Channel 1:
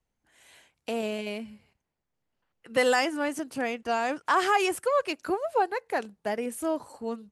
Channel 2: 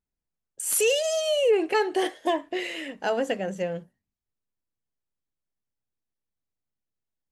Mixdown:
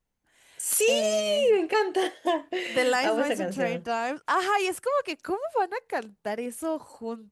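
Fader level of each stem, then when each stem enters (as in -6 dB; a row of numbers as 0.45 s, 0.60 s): -1.0 dB, -0.5 dB; 0.00 s, 0.00 s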